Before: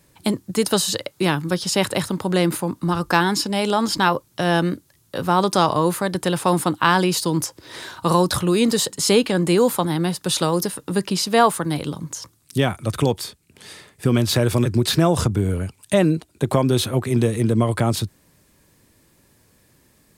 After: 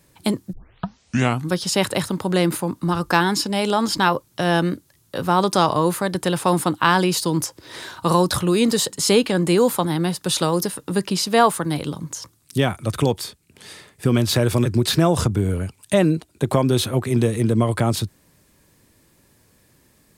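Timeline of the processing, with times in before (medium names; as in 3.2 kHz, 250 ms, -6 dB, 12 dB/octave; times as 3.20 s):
0.53 s: tape start 0.97 s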